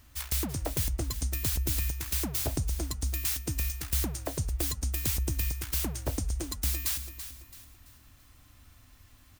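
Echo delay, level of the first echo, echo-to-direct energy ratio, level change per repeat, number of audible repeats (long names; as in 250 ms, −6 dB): 334 ms, −11.0 dB, −10.5 dB, −8.5 dB, 3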